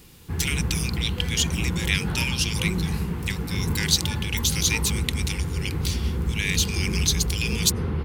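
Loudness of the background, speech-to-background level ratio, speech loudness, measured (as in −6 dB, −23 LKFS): −28.0 LKFS, 2.0 dB, −26.0 LKFS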